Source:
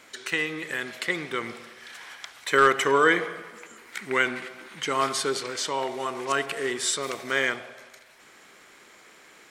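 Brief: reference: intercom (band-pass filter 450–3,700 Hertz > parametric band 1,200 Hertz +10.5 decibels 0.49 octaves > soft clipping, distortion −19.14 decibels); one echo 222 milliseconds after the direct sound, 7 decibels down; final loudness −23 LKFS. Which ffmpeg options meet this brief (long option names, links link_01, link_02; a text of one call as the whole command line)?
ffmpeg -i in.wav -af "highpass=450,lowpass=3700,equalizer=frequency=1200:width_type=o:width=0.49:gain=10.5,aecho=1:1:222:0.447,asoftclip=threshold=-5dB,volume=-1dB" out.wav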